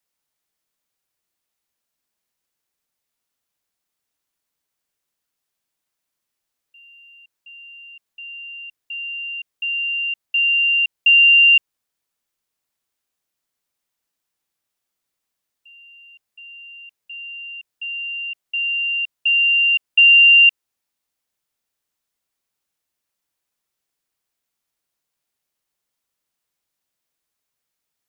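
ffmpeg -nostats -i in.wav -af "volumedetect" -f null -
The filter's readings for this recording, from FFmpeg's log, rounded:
mean_volume: -23.4 dB
max_volume: -6.7 dB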